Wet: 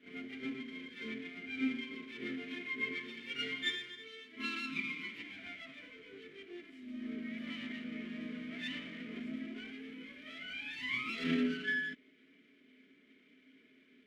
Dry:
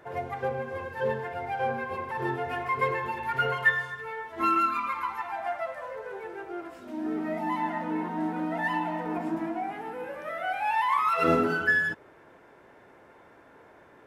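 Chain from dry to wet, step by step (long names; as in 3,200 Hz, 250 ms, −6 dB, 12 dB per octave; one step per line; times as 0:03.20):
lower of the sound and its delayed copy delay 4.7 ms
formant filter i
high-shelf EQ 4,800 Hz +8.5 dB
backwards echo 31 ms −8.5 dB
level +4.5 dB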